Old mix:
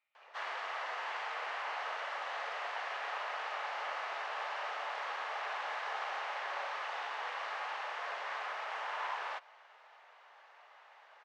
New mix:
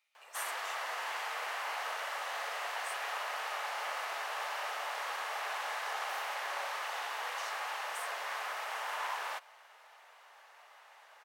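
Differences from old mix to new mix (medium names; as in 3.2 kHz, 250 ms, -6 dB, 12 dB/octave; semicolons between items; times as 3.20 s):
speech: remove distance through air 250 m; master: remove distance through air 160 m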